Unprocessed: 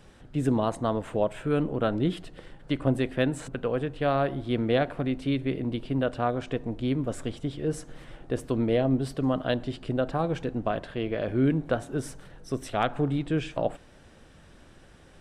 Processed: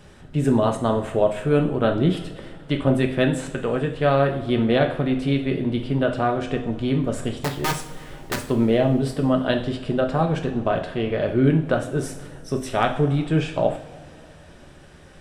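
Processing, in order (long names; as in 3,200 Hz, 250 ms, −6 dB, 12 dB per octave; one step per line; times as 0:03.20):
0:07.36–0:08.41: wrap-around overflow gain 23.5 dB
coupled-rooms reverb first 0.49 s, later 3.1 s, from −19 dB, DRR 3 dB
level +4.5 dB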